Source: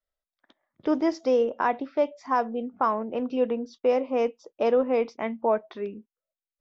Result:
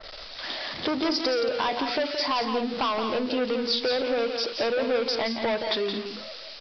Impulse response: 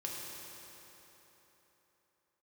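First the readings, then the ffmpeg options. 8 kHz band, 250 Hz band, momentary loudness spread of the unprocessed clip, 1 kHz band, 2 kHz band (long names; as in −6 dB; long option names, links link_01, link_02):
can't be measured, −1.0 dB, 7 LU, −1.5 dB, +6.5 dB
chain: -af "aeval=exprs='val(0)+0.5*0.01*sgn(val(0))':channel_layout=same,bass=frequency=250:gain=-7,treble=frequency=4000:gain=14,aresample=11025,asoftclip=type=tanh:threshold=-26dB,aresample=44100,acompressor=threshold=-33dB:ratio=6,aecho=1:1:172|224.5:0.447|0.251,adynamicequalizer=threshold=0.00282:dfrequency=2100:dqfactor=0.7:tfrequency=2100:tqfactor=0.7:attack=5:release=100:ratio=0.375:range=3:mode=boostabove:tftype=highshelf,volume=8dB"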